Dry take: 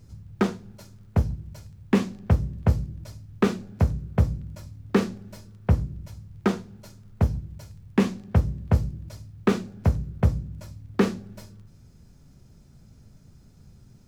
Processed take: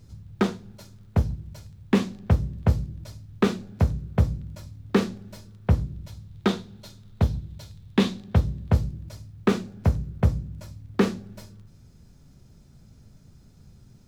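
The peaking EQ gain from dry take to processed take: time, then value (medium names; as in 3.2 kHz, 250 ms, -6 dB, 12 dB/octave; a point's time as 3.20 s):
peaking EQ 3.7 kHz 0.51 oct
5.63 s +4.5 dB
6.66 s +13 dB
8.09 s +13 dB
9.11 s +2.5 dB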